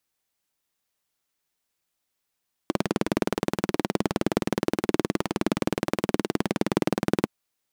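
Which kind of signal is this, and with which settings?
pulse-train model of a single-cylinder engine, steady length 4.57 s, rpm 2,300, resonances 210/310 Hz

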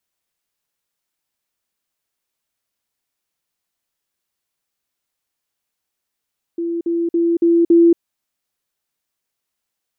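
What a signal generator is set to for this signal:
level staircase 338 Hz −19 dBFS, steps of 3 dB, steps 5, 0.23 s 0.05 s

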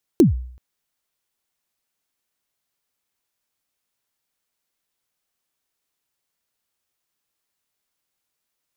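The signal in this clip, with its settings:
synth kick length 0.38 s, from 390 Hz, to 62 Hz, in 135 ms, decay 0.59 s, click on, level −6 dB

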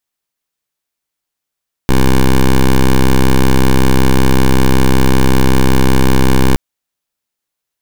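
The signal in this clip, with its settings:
pulse wave 65.3 Hz, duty 10% −7.5 dBFS 4.67 s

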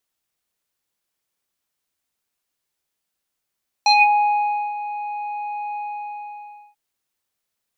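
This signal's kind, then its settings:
subtractive voice square G#5 24 dB per octave, low-pass 1,900 Hz, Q 4.9, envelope 1.5 octaves, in 0.22 s, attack 2.9 ms, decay 0.87 s, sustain −14 dB, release 0.99 s, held 1.90 s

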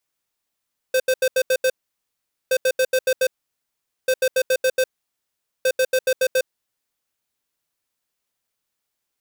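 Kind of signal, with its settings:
beeps in groups square 517 Hz, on 0.06 s, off 0.08 s, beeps 6, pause 0.81 s, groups 4, −17.5 dBFS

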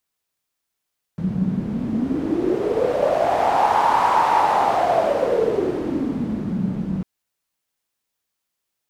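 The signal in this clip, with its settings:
wind from filtered noise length 5.85 s, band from 180 Hz, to 920 Hz, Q 6.7, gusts 1, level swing 7 dB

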